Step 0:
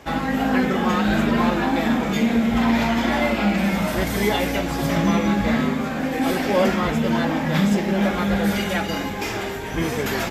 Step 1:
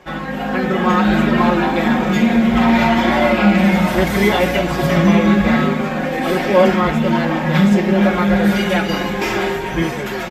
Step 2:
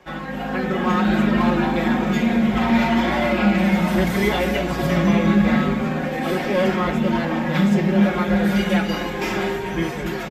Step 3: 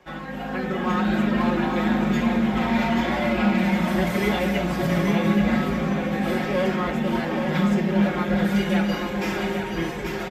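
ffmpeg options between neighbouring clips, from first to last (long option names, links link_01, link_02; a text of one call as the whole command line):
ffmpeg -i in.wav -af "bass=frequency=250:gain=-2,treble=frequency=4000:gain=-7,aecho=1:1:5.5:0.62,dynaudnorm=framelen=120:gausssize=11:maxgain=11.5dB,volume=-1dB" out.wav
ffmpeg -i in.wav -filter_complex "[0:a]acrossover=split=400|1300[link_01][link_02][link_03];[link_01]aecho=1:1:271:0.668[link_04];[link_02]volume=17dB,asoftclip=hard,volume=-17dB[link_05];[link_04][link_05][link_03]amix=inputs=3:normalize=0,volume=-5dB" out.wav
ffmpeg -i in.wav -af "aecho=1:1:830:0.473,volume=-4dB" out.wav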